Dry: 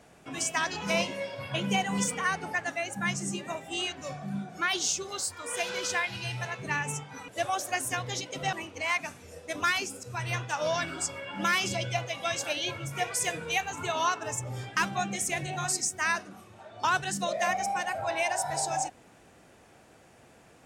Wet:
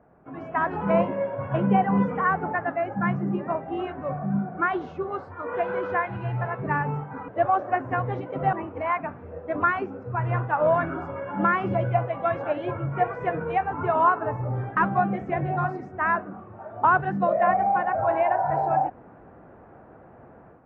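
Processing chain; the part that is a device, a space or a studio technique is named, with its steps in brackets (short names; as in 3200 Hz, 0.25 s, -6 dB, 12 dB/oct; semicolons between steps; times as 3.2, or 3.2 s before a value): action camera in a waterproof case (LPF 1400 Hz 24 dB/oct; AGC gain up to 10 dB; gain -1 dB; AAC 48 kbps 32000 Hz)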